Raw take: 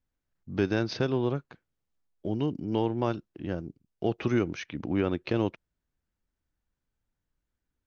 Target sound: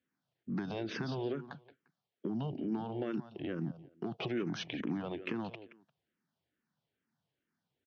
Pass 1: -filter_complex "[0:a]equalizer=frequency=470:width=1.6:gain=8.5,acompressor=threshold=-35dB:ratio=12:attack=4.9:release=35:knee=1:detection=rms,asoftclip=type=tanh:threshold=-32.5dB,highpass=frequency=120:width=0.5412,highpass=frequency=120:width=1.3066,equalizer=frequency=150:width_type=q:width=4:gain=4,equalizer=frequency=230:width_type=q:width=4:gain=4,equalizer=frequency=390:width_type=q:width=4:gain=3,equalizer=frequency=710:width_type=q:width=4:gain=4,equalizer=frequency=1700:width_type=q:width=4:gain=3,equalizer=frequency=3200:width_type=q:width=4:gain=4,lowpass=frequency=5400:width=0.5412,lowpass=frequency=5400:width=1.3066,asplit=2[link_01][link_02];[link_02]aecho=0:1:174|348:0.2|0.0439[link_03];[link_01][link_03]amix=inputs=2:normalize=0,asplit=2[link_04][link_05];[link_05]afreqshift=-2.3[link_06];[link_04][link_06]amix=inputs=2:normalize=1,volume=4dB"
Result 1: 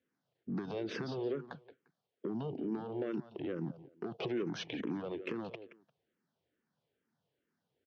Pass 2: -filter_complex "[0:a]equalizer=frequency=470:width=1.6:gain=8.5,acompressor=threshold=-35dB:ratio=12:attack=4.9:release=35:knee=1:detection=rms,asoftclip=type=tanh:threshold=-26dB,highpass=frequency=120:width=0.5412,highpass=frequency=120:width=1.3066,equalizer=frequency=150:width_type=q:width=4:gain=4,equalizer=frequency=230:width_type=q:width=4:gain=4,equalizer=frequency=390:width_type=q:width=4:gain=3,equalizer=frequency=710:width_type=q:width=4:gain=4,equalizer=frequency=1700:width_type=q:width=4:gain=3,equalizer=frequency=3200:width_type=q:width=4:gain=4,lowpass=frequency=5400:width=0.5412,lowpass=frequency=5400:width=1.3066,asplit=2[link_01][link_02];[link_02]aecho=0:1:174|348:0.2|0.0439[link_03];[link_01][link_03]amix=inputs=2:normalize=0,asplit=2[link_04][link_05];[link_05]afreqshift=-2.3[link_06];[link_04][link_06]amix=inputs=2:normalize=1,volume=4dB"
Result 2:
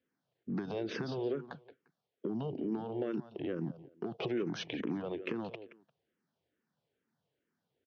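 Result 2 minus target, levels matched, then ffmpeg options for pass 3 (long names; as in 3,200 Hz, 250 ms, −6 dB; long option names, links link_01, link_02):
500 Hz band +2.5 dB
-filter_complex "[0:a]acompressor=threshold=-35dB:ratio=12:attack=4.9:release=35:knee=1:detection=rms,asoftclip=type=tanh:threshold=-26dB,highpass=frequency=120:width=0.5412,highpass=frequency=120:width=1.3066,equalizer=frequency=150:width_type=q:width=4:gain=4,equalizer=frequency=230:width_type=q:width=4:gain=4,equalizer=frequency=390:width_type=q:width=4:gain=3,equalizer=frequency=710:width_type=q:width=4:gain=4,equalizer=frequency=1700:width_type=q:width=4:gain=3,equalizer=frequency=3200:width_type=q:width=4:gain=4,lowpass=frequency=5400:width=0.5412,lowpass=frequency=5400:width=1.3066,asplit=2[link_01][link_02];[link_02]aecho=0:1:174|348:0.2|0.0439[link_03];[link_01][link_03]amix=inputs=2:normalize=0,asplit=2[link_04][link_05];[link_05]afreqshift=-2.3[link_06];[link_04][link_06]amix=inputs=2:normalize=1,volume=4dB"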